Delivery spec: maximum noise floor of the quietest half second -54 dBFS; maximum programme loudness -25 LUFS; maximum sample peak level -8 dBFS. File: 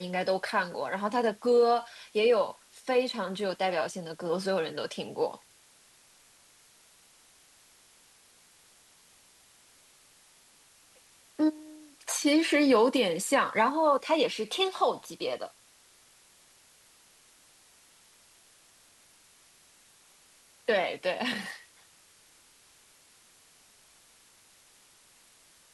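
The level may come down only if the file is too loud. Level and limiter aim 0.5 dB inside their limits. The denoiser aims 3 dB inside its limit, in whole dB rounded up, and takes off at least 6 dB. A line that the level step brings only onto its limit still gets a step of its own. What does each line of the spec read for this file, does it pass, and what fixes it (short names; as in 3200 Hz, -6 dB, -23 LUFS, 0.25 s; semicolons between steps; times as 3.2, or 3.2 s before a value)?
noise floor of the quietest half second -60 dBFS: OK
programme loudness -28.5 LUFS: OK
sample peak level -12.5 dBFS: OK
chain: none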